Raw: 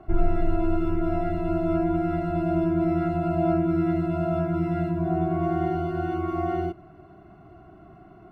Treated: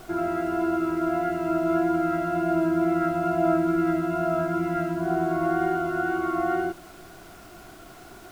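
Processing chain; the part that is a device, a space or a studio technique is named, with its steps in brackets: horn gramophone (band-pass 250–3200 Hz; peaking EQ 1.5 kHz +11 dB 0.34 oct; wow and flutter 15 cents; pink noise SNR 24 dB); trim +2 dB

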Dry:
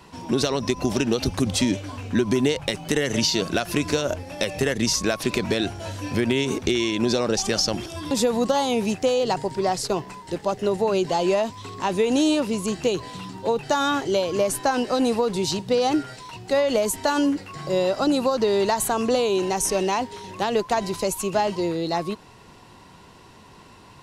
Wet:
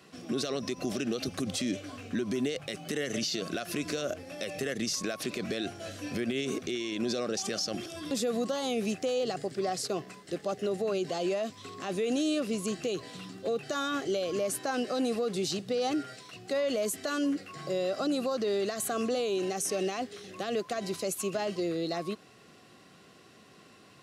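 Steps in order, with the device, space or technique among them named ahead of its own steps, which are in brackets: PA system with an anti-feedback notch (high-pass 160 Hz 12 dB/octave; Butterworth band-stop 920 Hz, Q 3.4; peak limiter -17 dBFS, peak gain reduction 9 dB); trim -5.5 dB

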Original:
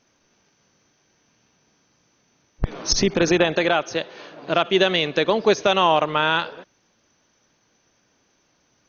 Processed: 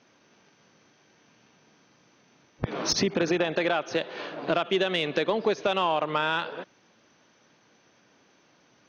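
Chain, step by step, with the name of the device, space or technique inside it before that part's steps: AM radio (band-pass 130–4300 Hz; compression 4:1, threshold -27 dBFS, peak gain reduction 13 dB; saturation -15.5 dBFS, distortion -23 dB); trim +4.5 dB

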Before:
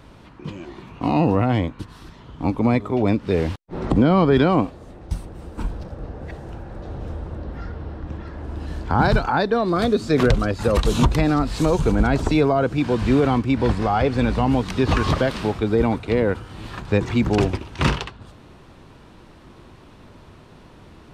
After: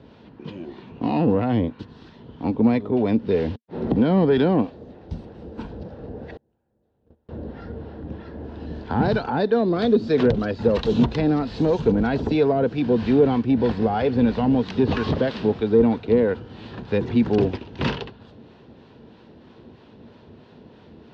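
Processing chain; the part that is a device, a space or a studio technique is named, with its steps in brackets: guitar amplifier with harmonic tremolo (harmonic tremolo 3.1 Hz, depth 50%, crossover 680 Hz; saturation -12.5 dBFS, distortion -18 dB; cabinet simulation 83–4600 Hz, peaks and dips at 230 Hz +7 dB, 450 Hz +7 dB, 1.2 kHz -8 dB, 2.2 kHz -5 dB); 6.37–7.29 s: gate -27 dBFS, range -34 dB

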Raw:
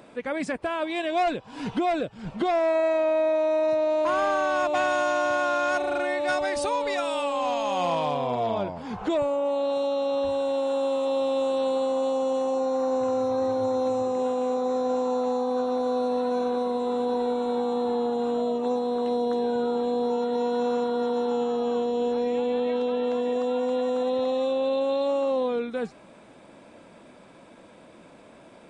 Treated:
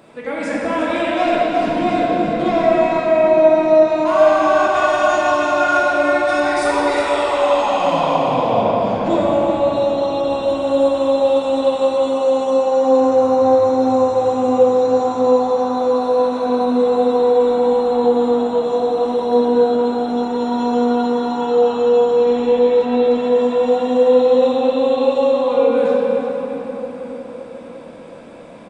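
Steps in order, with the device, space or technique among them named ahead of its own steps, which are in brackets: cave (delay 350 ms -9 dB; reverberation RT60 5.1 s, pre-delay 7 ms, DRR -7 dB); trim +1 dB

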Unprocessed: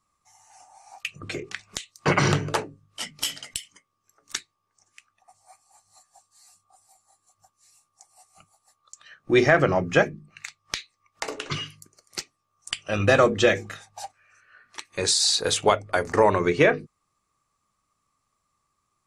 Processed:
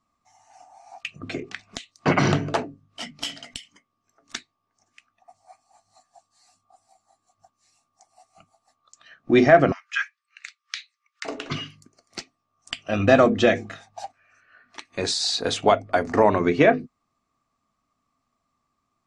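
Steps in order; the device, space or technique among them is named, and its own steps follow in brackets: 9.72–11.25 s: steep high-pass 1.3 kHz 48 dB/octave; inside a cardboard box (low-pass 5.5 kHz 12 dB/octave; small resonant body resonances 250/680 Hz, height 11 dB, ringing for 45 ms); trim -1 dB

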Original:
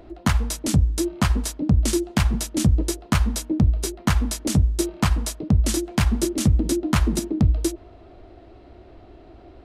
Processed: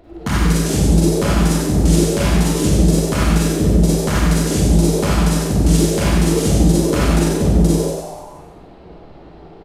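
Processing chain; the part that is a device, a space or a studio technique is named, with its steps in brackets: frequency-shifting echo 94 ms, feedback 58%, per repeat +110 Hz, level -4 dB; parallel distortion (in parallel at -12.5 dB: hard clipper -21.5 dBFS, distortion -6 dB); on the sum: Schroeder reverb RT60 0.79 s, DRR -5.5 dB; trim -4 dB

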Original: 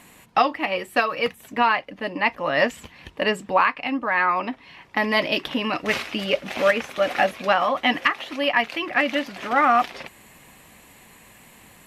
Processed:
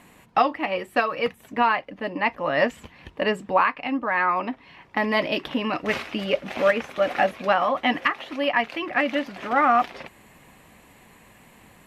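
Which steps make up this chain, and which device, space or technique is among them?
behind a face mask (treble shelf 2.7 kHz -8 dB)

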